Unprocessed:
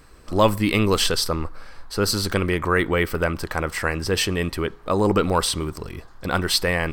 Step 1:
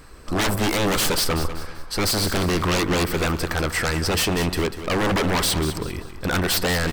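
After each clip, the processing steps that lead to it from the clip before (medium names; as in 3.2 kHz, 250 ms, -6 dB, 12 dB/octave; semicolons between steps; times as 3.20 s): wavefolder -20.5 dBFS; on a send: feedback delay 194 ms, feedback 36%, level -11.5 dB; on the sum: trim +4.5 dB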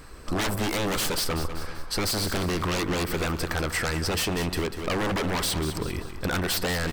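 compression, threshold -24 dBFS, peak gain reduction 6.5 dB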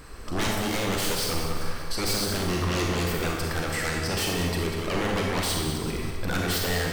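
peak limiter -23 dBFS, peak gain reduction 7 dB; reverberation RT60 1.0 s, pre-delay 34 ms, DRR 0 dB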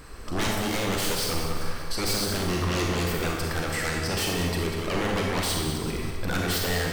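no audible change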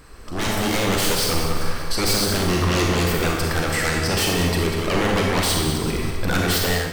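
level rider gain up to 8 dB; trim -1.5 dB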